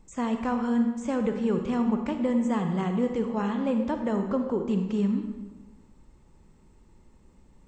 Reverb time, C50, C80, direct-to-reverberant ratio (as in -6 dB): 1.2 s, 6.0 dB, 8.0 dB, 5.5 dB